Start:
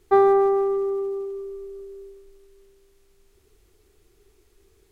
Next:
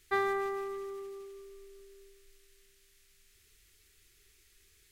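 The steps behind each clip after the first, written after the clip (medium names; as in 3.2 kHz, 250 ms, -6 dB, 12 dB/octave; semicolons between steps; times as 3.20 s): FFT filter 160 Hz 0 dB, 370 Hz -8 dB, 900 Hz -7 dB, 1.8 kHz +12 dB; trim -8.5 dB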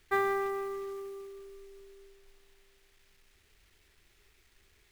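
low-pass 3 kHz 12 dB/octave; companded quantiser 6-bit; trim +1.5 dB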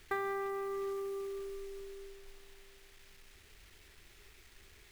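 compression 4:1, threshold -43 dBFS, peak gain reduction 15 dB; trim +6.5 dB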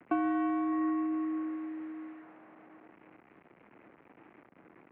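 median filter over 25 samples; mistuned SSB -79 Hz 250–2300 Hz; band-passed feedback delay 609 ms, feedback 45%, band-pass 670 Hz, level -17 dB; trim +8.5 dB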